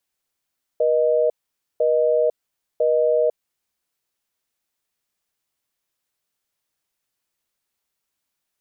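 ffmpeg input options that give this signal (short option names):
-f lavfi -i "aevalsrc='0.126*(sin(2*PI*480*t)+sin(2*PI*620*t))*clip(min(mod(t,1),0.5-mod(t,1))/0.005,0,1)':d=2.78:s=44100"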